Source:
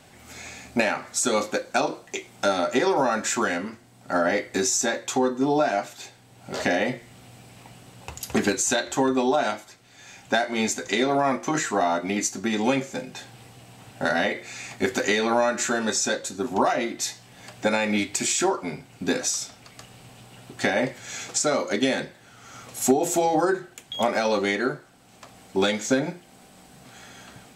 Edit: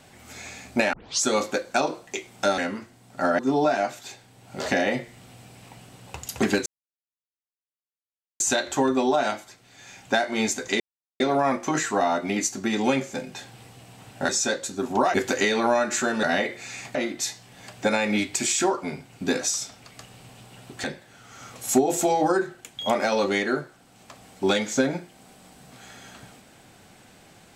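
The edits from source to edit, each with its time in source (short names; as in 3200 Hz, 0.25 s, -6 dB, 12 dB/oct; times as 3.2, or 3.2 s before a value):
0.93 tape start 0.31 s
2.58–3.49 cut
4.3–5.33 cut
8.6 insert silence 1.74 s
11 insert silence 0.40 s
14.09–14.81 swap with 15.9–16.75
20.64–21.97 cut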